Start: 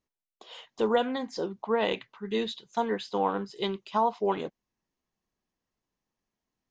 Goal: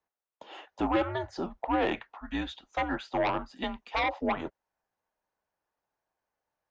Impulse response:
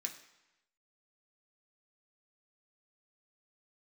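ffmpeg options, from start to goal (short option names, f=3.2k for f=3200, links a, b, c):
-filter_complex "[0:a]highpass=180,afreqshift=-160,acrossover=split=460|1700[a][b][c];[b]aeval=exprs='0.141*sin(PI/2*3.55*val(0)/0.141)':c=same[d];[a][d][c]amix=inputs=3:normalize=0,volume=-7dB"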